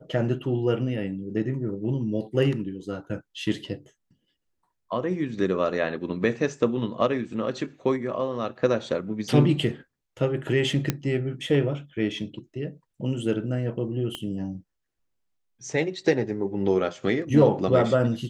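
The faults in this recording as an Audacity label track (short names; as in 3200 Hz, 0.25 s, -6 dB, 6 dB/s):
10.900000	10.900000	pop -9 dBFS
14.150000	14.150000	pop -18 dBFS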